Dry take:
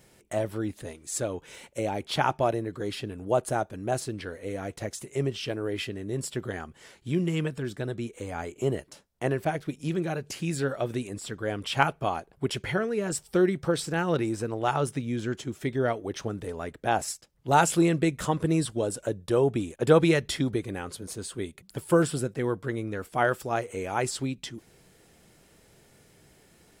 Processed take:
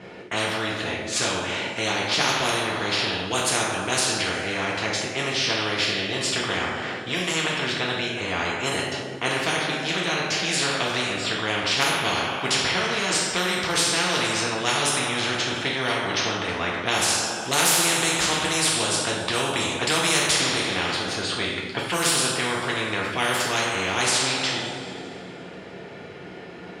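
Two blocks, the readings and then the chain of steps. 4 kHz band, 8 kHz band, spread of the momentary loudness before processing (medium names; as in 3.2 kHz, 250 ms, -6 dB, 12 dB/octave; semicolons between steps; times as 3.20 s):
+16.5 dB, +12.5 dB, 12 LU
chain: level-controlled noise filter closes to 1.9 kHz, open at -19.5 dBFS; high-pass 160 Hz 12 dB/octave; peaking EQ 3.5 kHz +5 dB 1.7 oct; band-stop 7.9 kHz, Q 16; two-slope reverb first 0.61 s, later 2.4 s, from -17 dB, DRR -3 dB; spectrum-flattening compressor 4:1; trim -1.5 dB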